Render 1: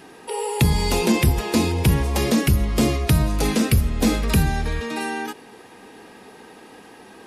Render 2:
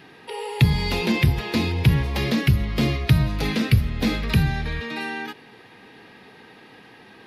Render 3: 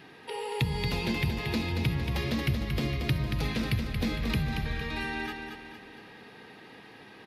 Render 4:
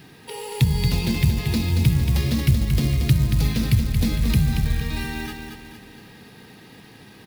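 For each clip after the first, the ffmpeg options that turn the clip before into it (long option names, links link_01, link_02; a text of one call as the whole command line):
ffmpeg -i in.wav -af "equalizer=frequency=125:width_type=o:width=1:gain=10,equalizer=frequency=2000:width_type=o:width=1:gain=7,equalizer=frequency=4000:width_type=o:width=1:gain=8,equalizer=frequency=8000:width_type=o:width=1:gain=-12,volume=-6dB" out.wav
ffmpeg -i in.wav -filter_complex "[0:a]acompressor=threshold=-28dB:ratio=2,asplit=2[link_01][link_02];[link_02]aecho=0:1:229|458|687|916|1145|1374:0.501|0.231|0.106|0.0488|0.0224|0.0103[link_03];[link_01][link_03]amix=inputs=2:normalize=0,volume=-3.5dB" out.wav
ffmpeg -i in.wav -af "acrusher=bits=5:mode=log:mix=0:aa=0.000001,bass=frequency=250:gain=12,treble=frequency=4000:gain=11" out.wav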